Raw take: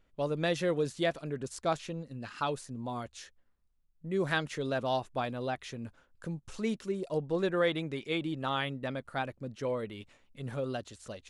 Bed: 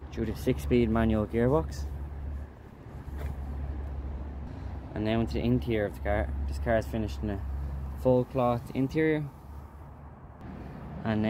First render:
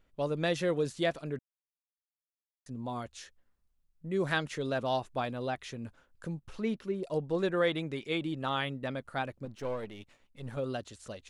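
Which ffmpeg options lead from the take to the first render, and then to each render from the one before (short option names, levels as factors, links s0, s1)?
-filter_complex "[0:a]asettb=1/sr,asplit=3[s0][s1][s2];[s0]atrim=end=6.394[s3];[s1]atrim=start=6.39:end=7.03,asetpts=PTS-STARTPTS,afade=t=in:d=0.004:c=qsin,afade=t=out:st=0.636:d=0.004:c=qsin,equalizer=f=7700:w=0.96:g=-13[s4];[s2]atrim=start=7.026[s5];[s3][s4]acrossfade=d=0.004:c1=hsin:c2=qsin[s6];[s6][s5]acrossfade=d=0.004:c1=qsin:c2=hsin,asettb=1/sr,asplit=3[s7][s8][s9];[s7]atrim=end=9.454[s10];[s8]atrim=start=9.45:end=10.57,asetpts=PTS-STARTPTS,afade=t=in:d=0.004:c=qsin,afade=t=out:st=1.116:d=0.004:c=qsin,aeval=exprs='if(lt(val(0),0),0.447*val(0),val(0))':c=same[s11];[s9]atrim=start=10.566[s12];[s10][s11]acrossfade=d=0.004:c1=hsin:c2=qsin[s13];[s13][s12]acrossfade=d=0.004:c1=qsin:c2=hsin,asplit=3[s14][s15][s16];[s14]atrim=end=1.39,asetpts=PTS-STARTPTS,afade=t=out:st=1.386:d=0.004:c=hsin[s17];[s15]atrim=start=1.39:end=2.66,asetpts=PTS-STARTPTS,volume=0[s18];[s16]atrim=start=2.66,asetpts=PTS-STARTPTS,afade=t=in:d=0.004:c=hsin[s19];[s17][s18][s19]concat=n=3:v=0:a=1"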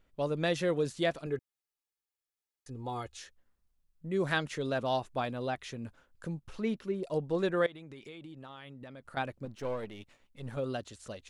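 -filter_complex "[0:a]asettb=1/sr,asplit=3[s0][s1][s2];[s0]atrim=end=1.264[s3];[s1]atrim=start=1.26:end=3.17,asetpts=PTS-STARTPTS,afade=t=in:d=0.004:c=qsin,afade=t=out:st=1.906:d=0.004:c=qsin,aecho=1:1:2.4:0.65,atrim=end_sample=84231[s4];[s2]atrim=start=3.166[s5];[s3][s4]acrossfade=d=0.004:c1=hsin:c2=qsin[s6];[s6][s5]acrossfade=d=0.004:c1=qsin:c2=hsin,asettb=1/sr,asplit=3[s7][s8][s9];[s7]atrim=end=7.664[s10];[s8]atrim=start=7.66:end=9.17,asetpts=PTS-STARTPTS,afade=t=in:d=0.004:c=qsin,afade=t=out:st=1.506:d=0.004:c=qsin,acompressor=threshold=0.00708:ratio=16:attack=3.2:release=140:knee=1:detection=peak[s11];[s9]atrim=start=9.166[s12];[s10][s11]acrossfade=d=0.004:c1=hsin:c2=qsin[s13];[s13][s12]acrossfade=d=0.004:c1=qsin:c2=hsin"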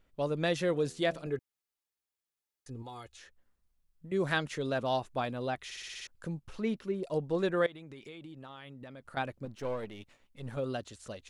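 -filter_complex "[0:a]asettb=1/sr,asplit=3[s0][s1][s2];[s0]atrim=end=0.724[s3];[s1]atrim=start=0.72:end=1.35,asetpts=PTS-STARTPTS,afade=t=in:d=0.004:c=qsin,afade=t=out:st=0.626:d=0.004:c=qsin,bandreject=f=81.29:t=h:w=4,bandreject=f=162.58:t=h:w=4,bandreject=f=243.87:t=h:w=4,bandreject=f=325.16:t=h:w=4,bandreject=f=406.45:t=h:w=4,bandreject=f=487.74:t=h:w=4,bandreject=f=569.03:t=h:w=4,bandreject=f=650.32:t=h:w=4,bandreject=f=731.61:t=h:w=4,bandreject=f=812.9:t=h:w=4[s4];[s2]atrim=start=1.346[s5];[s3][s4]acrossfade=d=0.004:c1=hsin:c2=qsin[s6];[s6][s5]acrossfade=d=0.004:c1=qsin:c2=hsin,asettb=1/sr,asplit=3[s7][s8][s9];[s7]atrim=end=2.824[s10];[s8]atrim=start=2.82:end=4.12,asetpts=PTS-STARTPTS,afade=t=in:d=0.004:c=qsin,afade=t=out:st=1.296:d=0.004:c=qsin,acrossover=split=1100|2500[s11][s12][s13];[s11]acompressor=threshold=0.00447:ratio=4[s14];[s12]acompressor=threshold=0.00251:ratio=4[s15];[s13]acompressor=threshold=0.00158:ratio=4[s16];[s14][s15][s16]amix=inputs=3:normalize=0[s17];[s9]atrim=start=4.116[s18];[s10][s17]acrossfade=d=0.004:c1=hsin:c2=qsin[s19];[s19][s18]acrossfade=d=0.004:c1=qsin:c2=hsin,asplit=8[s20][s21][s22][s23][s24][s25][s26][s27];[s20]atrim=end=5.712[s28];[s21]atrim=start=5.648:end=5.712[s29];[s22]atrim=start=5.648:end=5.712[s30];[s23]atrim=start=5.648:end=5.712[s31];[s24]atrim=start=5.648:end=5.712[s32];[s25]atrim=start=5.648:end=5.712[s33];[s26]atrim=start=5.648:end=5.712[s34];[s27]atrim=start=6.068[s35];[s28][s29]acrossfade=d=0.004:c1=hsin:c2=hsin[s36];[s36][s30]acrossfade=d=0.004:c1=hsin:c2=hsin[s37];[s37][s31]acrossfade=d=0.004:c1=hsin:c2=hsin[s38];[s38][s32]acrossfade=d=0.004:c1=hsin:c2=hsin[s39];[s39][s33]acrossfade=d=0.004:c1=hsin:c2=hsin[s40];[s40][s34]acrossfade=d=0.004:c1=hsin:c2=hsin[s41];[s41][s35]acrossfade=d=0.004:c1=hsin:c2=hsin"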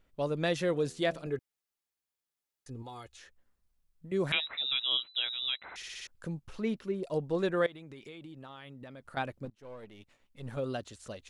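-filter_complex "[0:a]asettb=1/sr,asplit=3[s0][s1][s2];[s0]atrim=end=4.324[s3];[s1]atrim=start=4.32:end=5.76,asetpts=PTS-STARTPTS,afade=t=in:d=0.004:c=qsin,afade=t=out:st=1.436:d=0.004:c=qsin,lowpass=f=3400:t=q:w=0.5098,lowpass=f=3400:t=q:w=0.6013,lowpass=f=3400:t=q:w=0.9,lowpass=f=3400:t=q:w=2.563,afreqshift=-4000[s4];[s2]atrim=start=5.756[s5];[s3][s4]acrossfade=d=0.004:c1=hsin:c2=qsin[s6];[s6][s5]acrossfade=d=0.004:c1=qsin:c2=hsin,asplit=2[s7][s8];[s7]atrim=end=9.5,asetpts=PTS-STARTPTS,afade=t=out:st=9.496:d=0.004:c=hsin:silence=0.0707946[s9];[s8]atrim=start=9.5,asetpts=PTS-STARTPTS,afade=t=in:d=1.01:silence=0.0707946[s10];[s9][s10]concat=n=2:v=0:a=1"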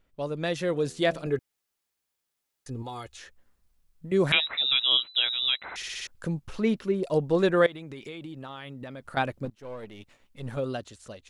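-af "dynaudnorm=f=210:g=9:m=2.37"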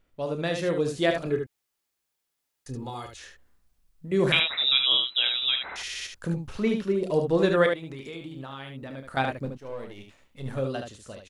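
-af "aecho=1:1:30|74:0.335|0.501"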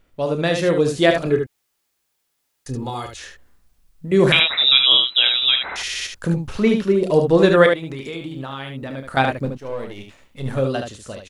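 -af "volume=2.66,alimiter=limit=0.891:level=0:latency=1"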